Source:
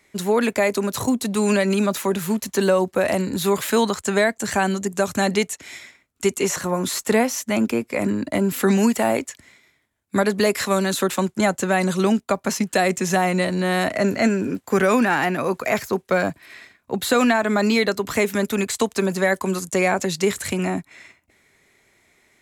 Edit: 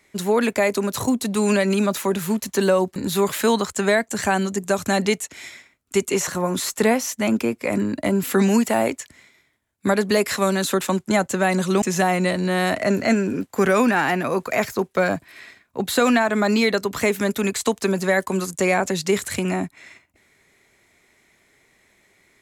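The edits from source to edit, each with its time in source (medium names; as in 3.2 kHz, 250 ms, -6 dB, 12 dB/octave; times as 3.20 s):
2.96–3.25 s: delete
12.11–12.96 s: delete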